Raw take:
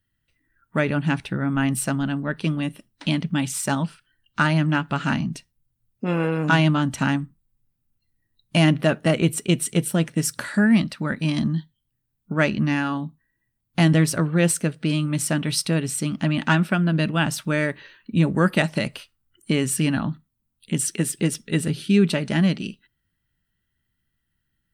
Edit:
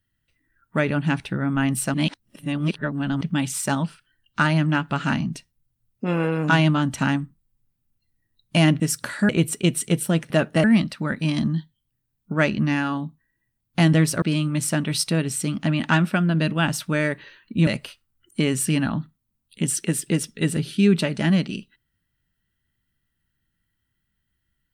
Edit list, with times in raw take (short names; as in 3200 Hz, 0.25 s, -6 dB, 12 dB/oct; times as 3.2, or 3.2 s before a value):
1.94–3.21 reverse
8.8–9.14 swap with 10.15–10.64
14.22–14.8 cut
18.25–18.78 cut